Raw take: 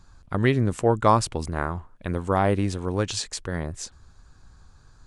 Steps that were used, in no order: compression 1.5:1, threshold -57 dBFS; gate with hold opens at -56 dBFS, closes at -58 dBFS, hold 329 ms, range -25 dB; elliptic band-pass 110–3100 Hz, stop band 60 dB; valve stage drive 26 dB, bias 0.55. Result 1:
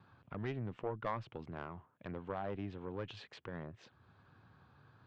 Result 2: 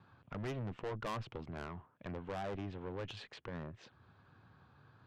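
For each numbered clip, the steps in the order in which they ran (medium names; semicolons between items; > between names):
gate with hold > elliptic band-pass > compression > valve stage; gate with hold > elliptic band-pass > valve stage > compression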